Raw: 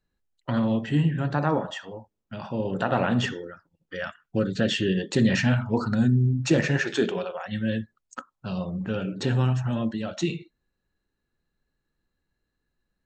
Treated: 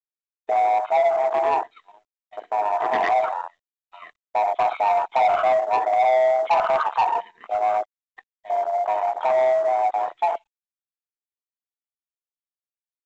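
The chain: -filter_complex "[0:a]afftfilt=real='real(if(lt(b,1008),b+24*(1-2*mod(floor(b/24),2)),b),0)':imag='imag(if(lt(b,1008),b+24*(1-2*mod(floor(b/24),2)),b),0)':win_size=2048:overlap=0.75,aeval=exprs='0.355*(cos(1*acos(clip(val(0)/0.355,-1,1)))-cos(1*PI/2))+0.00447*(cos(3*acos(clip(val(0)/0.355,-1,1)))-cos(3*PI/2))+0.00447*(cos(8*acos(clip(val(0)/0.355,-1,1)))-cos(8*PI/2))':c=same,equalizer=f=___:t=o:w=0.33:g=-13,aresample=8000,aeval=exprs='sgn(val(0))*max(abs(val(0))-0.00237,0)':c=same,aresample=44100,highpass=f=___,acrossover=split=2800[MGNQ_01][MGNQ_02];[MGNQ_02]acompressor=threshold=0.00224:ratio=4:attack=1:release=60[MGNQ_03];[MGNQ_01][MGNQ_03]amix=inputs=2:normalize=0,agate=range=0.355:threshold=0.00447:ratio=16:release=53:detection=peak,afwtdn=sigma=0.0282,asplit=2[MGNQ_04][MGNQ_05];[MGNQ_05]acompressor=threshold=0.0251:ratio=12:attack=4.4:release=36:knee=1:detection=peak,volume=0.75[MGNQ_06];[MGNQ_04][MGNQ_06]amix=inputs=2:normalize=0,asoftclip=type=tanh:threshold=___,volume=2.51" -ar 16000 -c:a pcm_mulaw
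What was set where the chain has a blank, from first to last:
1500, 650, 0.0841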